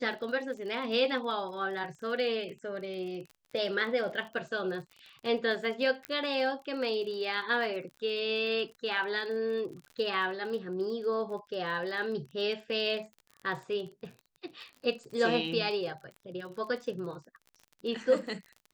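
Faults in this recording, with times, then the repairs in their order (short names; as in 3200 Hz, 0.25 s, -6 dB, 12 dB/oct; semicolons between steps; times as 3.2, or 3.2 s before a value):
crackle 34/s -40 dBFS
6.05 pop -21 dBFS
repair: de-click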